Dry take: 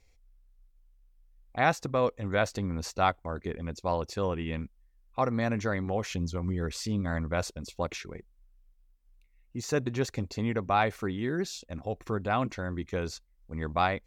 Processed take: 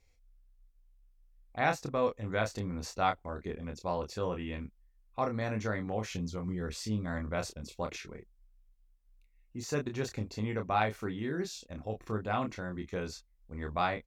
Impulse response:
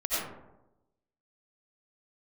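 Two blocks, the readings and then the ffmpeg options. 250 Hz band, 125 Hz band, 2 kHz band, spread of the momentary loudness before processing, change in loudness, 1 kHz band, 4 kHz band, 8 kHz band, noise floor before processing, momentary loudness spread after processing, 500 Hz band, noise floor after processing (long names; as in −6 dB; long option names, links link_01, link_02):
−4.0 dB, −4.5 dB, −4.0 dB, 11 LU, −4.0 dB, −3.5 dB, −4.0 dB, −4.0 dB, −64 dBFS, 11 LU, −4.0 dB, −67 dBFS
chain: -filter_complex "[0:a]asplit=2[link_01][link_02];[link_02]adelay=28,volume=-5.5dB[link_03];[link_01][link_03]amix=inputs=2:normalize=0,volume=-5dB"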